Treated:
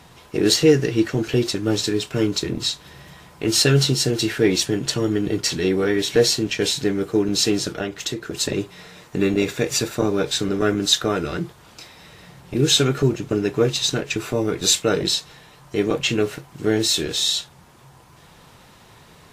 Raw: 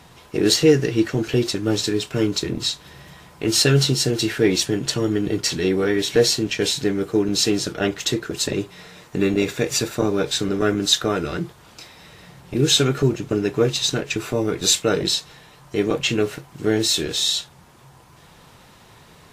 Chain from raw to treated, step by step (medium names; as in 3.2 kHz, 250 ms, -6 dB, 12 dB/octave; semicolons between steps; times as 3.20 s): 7.79–8.35 s: compression, threshold -23 dBFS, peak gain reduction 7.5 dB